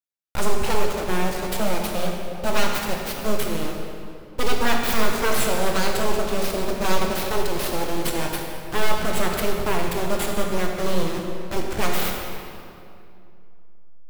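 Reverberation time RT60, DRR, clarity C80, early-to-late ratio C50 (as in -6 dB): 2.6 s, 0.5 dB, 3.0 dB, 2.0 dB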